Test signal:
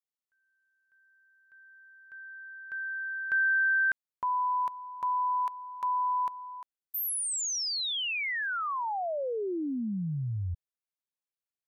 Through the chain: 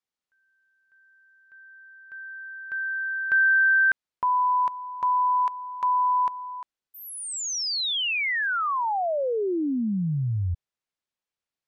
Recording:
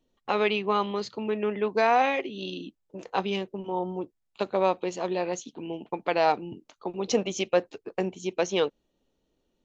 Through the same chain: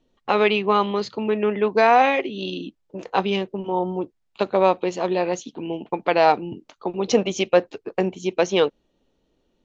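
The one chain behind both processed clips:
Bessel low-pass filter 5,400 Hz
level +6.5 dB

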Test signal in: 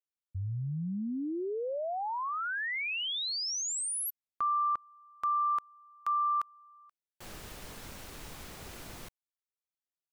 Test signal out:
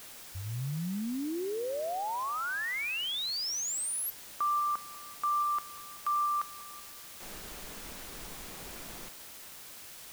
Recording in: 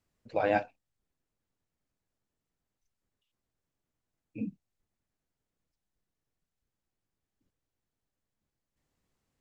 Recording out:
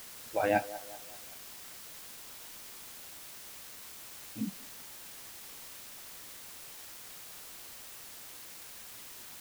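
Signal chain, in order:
noise reduction from a noise print of the clip's start 9 dB
delay with a band-pass on its return 191 ms, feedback 46%, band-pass 730 Hz, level −15 dB
bit-depth reduction 8 bits, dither triangular

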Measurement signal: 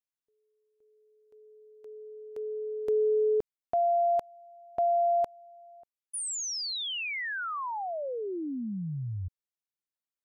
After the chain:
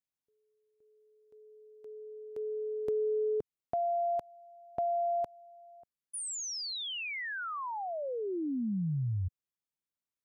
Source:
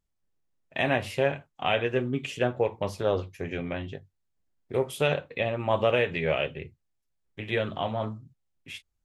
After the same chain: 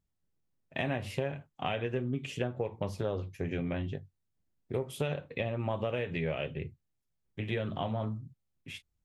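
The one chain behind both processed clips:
parametric band 130 Hz +8 dB 2.8 octaves
downward compressor, threshold −25 dBFS
level −4 dB

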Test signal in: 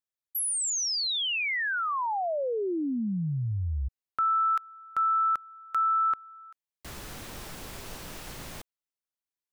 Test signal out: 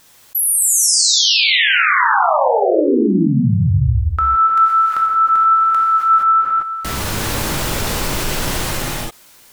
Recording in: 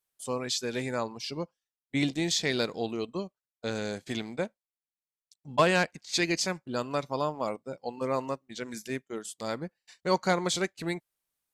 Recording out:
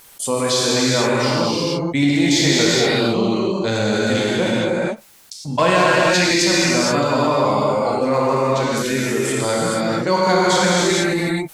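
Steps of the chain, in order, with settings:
pitch vibrato 3.3 Hz 8.7 cents
in parallel at −12 dB: hard clipping −21 dBFS
on the sum: reverb whose tail is shaped and stops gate 500 ms flat, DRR −6.5 dB
envelope flattener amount 50%
level +2 dB

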